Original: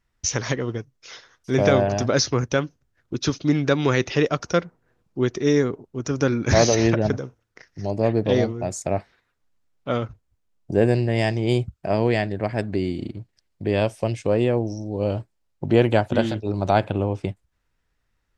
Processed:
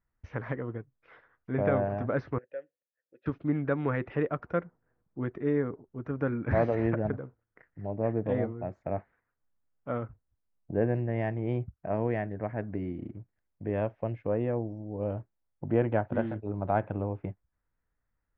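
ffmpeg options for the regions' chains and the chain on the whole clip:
-filter_complex "[0:a]asettb=1/sr,asplit=3[a][b][c];[a]atrim=end=2.384[d];[b]atrim=start=2.38:end=3.26,asetpts=PTS-STARTPTS,afade=t=in:d=0.004:c=qsin,afade=t=out:st=0.876:d=0.004:c=qsin,asplit=3[e][f][g];[e]bandpass=f=530:t=q:w=8,volume=0dB[h];[f]bandpass=f=1.84k:t=q:w=8,volume=-6dB[i];[g]bandpass=f=2.48k:t=q:w=8,volume=-9dB[j];[h][i][j]amix=inputs=3:normalize=0,lowshelf=f=410:g=-9.5[k];[c]atrim=start=3.256[l];[d][k]acrossfade=d=0.004:c1=hsin:c2=qsin[m];[m][l]acrossfade=d=0.004:c1=qsin:c2=hsin,lowpass=f=1.9k:w=0.5412,lowpass=f=1.9k:w=1.3066,bandreject=f=380:w=12,volume=-8.5dB"

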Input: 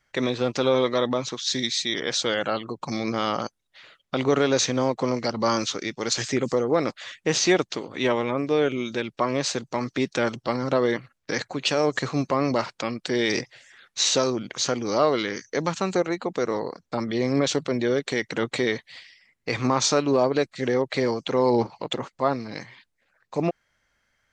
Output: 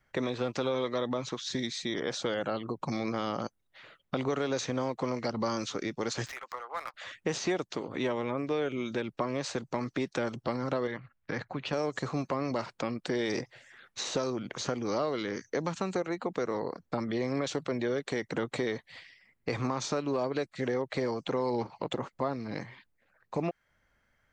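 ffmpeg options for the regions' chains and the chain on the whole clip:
-filter_complex "[0:a]asettb=1/sr,asplit=3[a][b][c];[a]atrim=end=6.264[d];[b]atrim=start=6.26:end=6.94,asetpts=PTS-STARTPTS,afade=t=in:d=0.004:c=qsin,afade=t=out:st=0.676:d=0.004:c=qsin,highpass=f=1k:w=0.5412,highpass=f=1k:w=1.3066,adynamicsmooth=sensitivity=6.5:basefreq=1.9k[e];[c]atrim=start=6.936[f];[d][e]acrossfade=d=0.004:c1=hsin:c2=qsin[g];[g][f]acrossfade=d=0.004:c1=qsin:c2=hsin,asettb=1/sr,asplit=3[h][i][j];[h]atrim=end=10.874[k];[i]atrim=start=10.87:end=11.73,asetpts=PTS-STARTPTS,afade=t=in:d=0.004:c=qsin,afade=t=out:st=0.856:d=0.004:c=qsin,lowpass=3.2k,equalizer=f=390:t=o:w=2:g=-8[l];[j]atrim=start=11.726[m];[k][l]acrossfade=d=0.004:c1=hsin:c2=qsin[n];[n][m]acrossfade=d=0.004:c1=qsin:c2=hsin,equalizer=f=5.7k:t=o:w=2.2:g=-9,acrossover=split=610|1400|3900[o][p][q][r];[o]acompressor=threshold=-34dB:ratio=4[s];[p]acompressor=threshold=-38dB:ratio=4[t];[q]acompressor=threshold=-44dB:ratio=4[u];[r]acompressor=threshold=-38dB:ratio=4[v];[s][t][u][v]amix=inputs=4:normalize=0,lowshelf=f=330:g=3"

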